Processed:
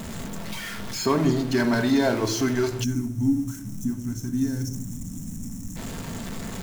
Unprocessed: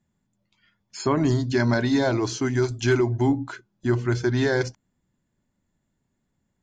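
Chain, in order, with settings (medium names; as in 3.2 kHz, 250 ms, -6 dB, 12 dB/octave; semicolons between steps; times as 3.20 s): jump at every zero crossing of -27 dBFS; simulated room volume 2000 m³, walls furnished, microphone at 1.6 m; time-frequency box 2.84–5.77 s, 320–5300 Hz -20 dB; trim -2.5 dB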